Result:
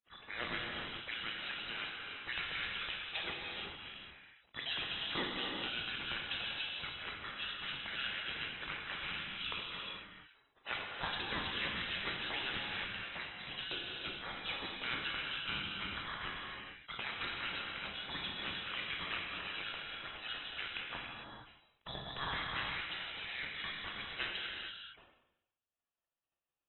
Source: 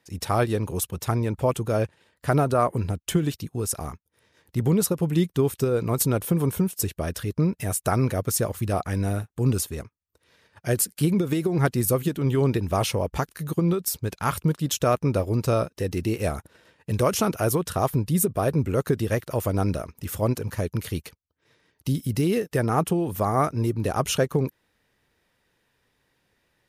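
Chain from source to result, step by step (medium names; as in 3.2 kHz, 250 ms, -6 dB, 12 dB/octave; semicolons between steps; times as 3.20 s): spectral gate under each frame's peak -25 dB weak; gated-style reverb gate 480 ms flat, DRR -1.5 dB; frequency inversion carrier 3.9 kHz; decay stretcher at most 67 dB/s; trim +1 dB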